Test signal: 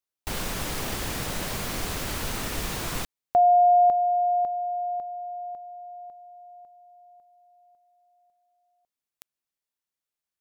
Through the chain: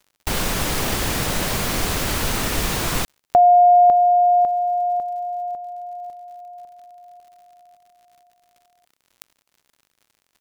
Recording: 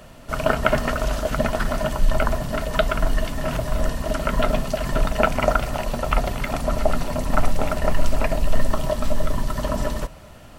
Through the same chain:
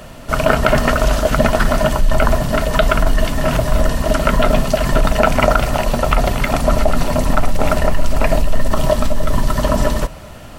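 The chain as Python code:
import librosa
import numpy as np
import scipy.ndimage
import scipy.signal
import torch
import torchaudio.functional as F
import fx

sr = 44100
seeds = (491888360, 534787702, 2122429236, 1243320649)

p1 = fx.over_compress(x, sr, threshold_db=-19.0, ratio=-0.5)
p2 = x + (p1 * librosa.db_to_amplitude(-2.0))
p3 = np.clip(p2, -10.0 ** (-4.0 / 20.0), 10.0 ** (-4.0 / 20.0))
p4 = fx.dmg_crackle(p3, sr, seeds[0], per_s=94.0, level_db=-46.0)
y = p4 * librosa.db_to_amplitude(2.5)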